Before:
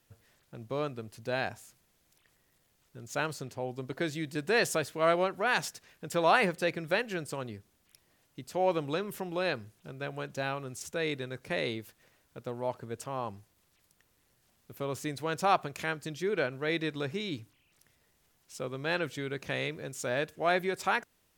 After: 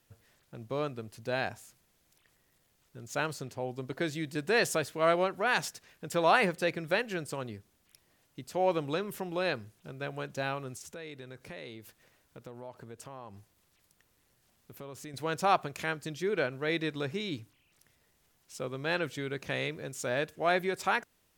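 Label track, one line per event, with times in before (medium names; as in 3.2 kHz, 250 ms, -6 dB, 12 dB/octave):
10.770000	15.140000	compression 3:1, threshold -44 dBFS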